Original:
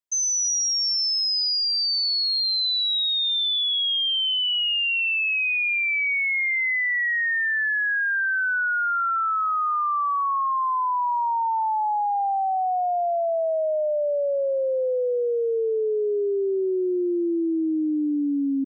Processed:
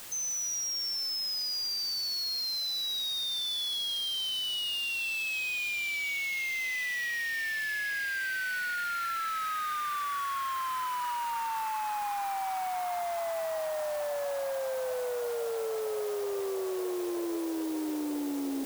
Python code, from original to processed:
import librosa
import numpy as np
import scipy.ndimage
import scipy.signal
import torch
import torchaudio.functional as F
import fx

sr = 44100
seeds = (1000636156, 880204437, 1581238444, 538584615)

y = fx.quant_dither(x, sr, seeds[0], bits=6, dither='triangular')
y = np.clip(10.0 ** (22.5 / 20.0) * y, -1.0, 1.0) / 10.0 ** (22.5 / 20.0)
y = fx.echo_diffused(y, sr, ms=1421, feedback_pct=70, wet_db=-13.5)
y = y * librosa.db_to_amplitude(-8.5)